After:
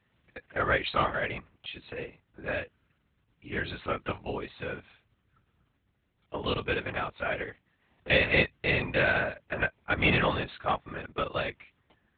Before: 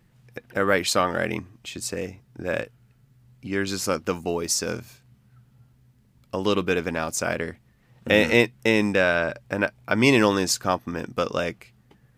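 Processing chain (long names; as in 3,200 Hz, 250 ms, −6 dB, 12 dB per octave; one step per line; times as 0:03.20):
low-shelf EQ 460 Hz −11.5 dB
linear-prediction vocoder at 8 kHz whisper
high-pass filter 62 Hz
level −1.5 dB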